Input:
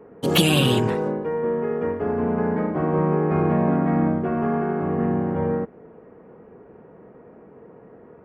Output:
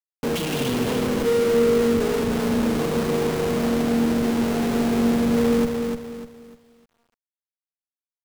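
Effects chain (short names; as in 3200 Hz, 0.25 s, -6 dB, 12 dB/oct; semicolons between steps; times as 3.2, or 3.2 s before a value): Schmitt trigger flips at -30 dBFS; small resonant body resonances 240/460 Hz, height 10 dB, ringing for 85 ms; lo-fi delay 0.299 s, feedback 35%, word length 9-bit, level -5 dB; gain -4 dB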